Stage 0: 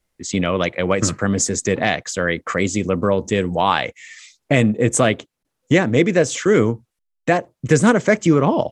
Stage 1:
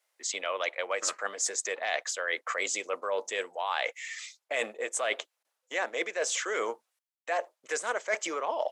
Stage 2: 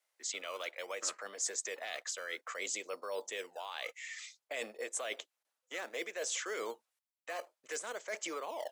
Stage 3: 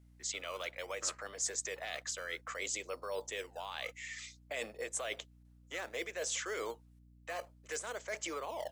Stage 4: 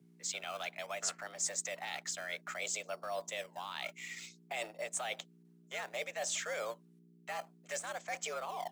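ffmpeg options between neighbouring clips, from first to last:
-af "highpass=f=570:w=0.5412,highpass=f=570:w=1.3066,areverse,acompressor=threshold=-28dB:ratio=6,areverse"
-filter_complex "[0:a]acrossover=split=470|2700[a][b][c];[a]acrusher=samples=17:mix=1:aa=0.000001:lfo=1:lforange=17:lforate=0.58[d];[b]alimiter=level_in=5.5dB:limit=-24dB:level=0:latency=1:release=118,volume=-5.5dB[e];[d][e][c]amix=inputs=3:normalize=0,volume=-5.5dB"
-af "aeval=exprs='val(0)+0.001*(sin(2*PI*60*n/s)+sin(2*PI*2*60*n/s)/2+sin(2*PI*3*60*n/s)/3+sin(2*PI*4*60*n/s)/4+sin(2*PI*5*60*n/s)/5)':c=same"
-filter_complex "[0:a]afreqshift=110,asplit=2[a][b];[b]aeval=exprs='val(0)*gte(abs(val(0)),0.00708)':c=same,volume=-10dB[c];[a][c]amix=inputs=2:normalize=0,volume=-2dB"

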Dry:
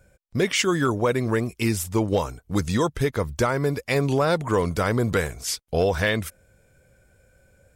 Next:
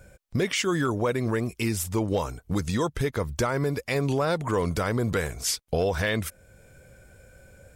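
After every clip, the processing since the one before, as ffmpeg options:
-af "alimiter=limit=-23dB:level=0:latency=1:release=489,volume=6.5dB"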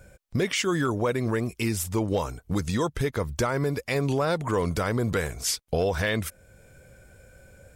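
-af anull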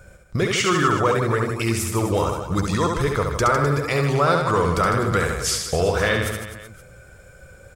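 -af "equalizer=f=250:t=o:w=0.33:g=-7,equalizer=f=1.25k:t=o:w=0.33:g=10,equalizer=f=12.5k:t=o:w=0.33:g=-6,aecho=1:1:70|154|254.8|375.8|520.9:0.631|0.398|0.251|0.158|0.1,volume=3.5dB"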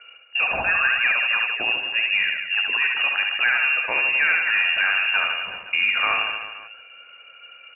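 -af "asoftclip=type=tanh:threshold=-11.5dB,lowpass=f=2.5k:t=q:w=0.5098,lowpass=f=2.5k:t=q:w=0.6013,lowpass=f=2.5k:t=q:w=0.9,lowpass=f=2.5k:t=q:w=2.563,afreqshift=-2900"

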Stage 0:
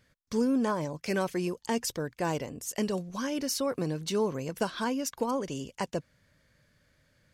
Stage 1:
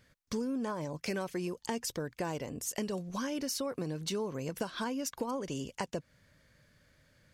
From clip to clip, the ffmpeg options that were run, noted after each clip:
-af "acompressor=threshold=-34dB:ratio=5,volume=1.5dB"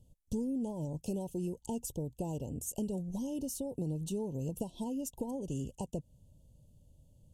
-af "asuperstop=centerf=1600:order=20:qfactor=0.93,aexciter=amount=9.3:drive=7.2:freq=7k,aemphasis=mode=reproduction:type=riaa,volume=-6.5dB"

